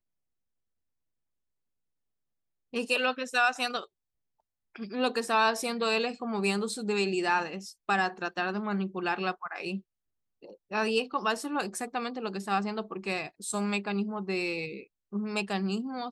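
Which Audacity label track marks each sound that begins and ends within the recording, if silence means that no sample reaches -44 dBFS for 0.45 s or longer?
2.730000	3.850000	sound
4.750000	9.800000	sound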